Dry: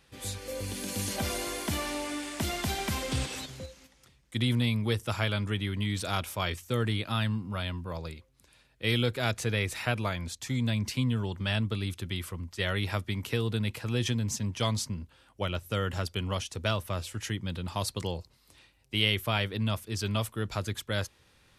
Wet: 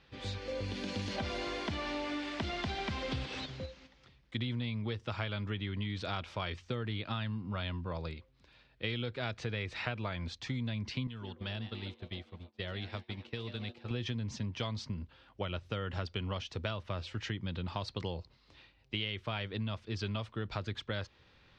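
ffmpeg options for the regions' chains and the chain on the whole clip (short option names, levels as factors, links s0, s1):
-filter_complex "[0:a]asettb=1/sr,asplit=3[s0][s1][s2];[s0]atrim=end=11.074[s3];[s1]atrim=start=11.07:end=13.91,asetpts=PTS-STARTPTS,afade=t=in:d=0.004:c=qsin,afade=t=out:st=2.836:d=0.004:c=qsin,asplit=8[s4][s5][s6][s7][s8][s9][s10][s11];[s5]adelay=143,afreqshift=130,volume=0.251[s12];[s6]adelay=286,afreqshift=260,volume=0.151[s13];[s7]adelay=429,afreqshift=390,volume=0.0902[s14];[s8]adelay=572,afreqshift=520,volume=0.0543[s15];[s9]adelay=715,afreqshift=650,volume=0.0327[s16];[s10]adelay=858,afreqshift=780,volume=0.0195[s17];[s11]adelay=1001,afreqshift=910,volume=0.0117[s18];[s4][s12][s13][s14][s15][s16][s17][s18]amix=inputs=8:normalize=0,atrim=end_sample=125244,agate=range=0.0224:threshold=0.0398:ratio=3:release=100:detection=peak,acrossover=split=980|3500[s19][s20][s21];[s19]acompressor=threshold=0.0112:ratio=4[s22];[s20]acompressor=threshold=0.00398:ratio=4[s23];[s21]acompressor=threshold=0.00631:ratio=4[s24];[s22][s23][s24]amix=inputs=3:normalize=0[s25];[s2]atrim=start=13.906[s26];[s3][s25]acrossfade=d=0.004:c1=hsin:c2=qsin[s27];[s27][s26]acrossfade=d=0.004:c1=qsin:c2=hsin,lowpass=f=4600:w=0.5412,lowpass=f=4600:w=1.3066,acompressor=threshold=0.0224:ratio=6"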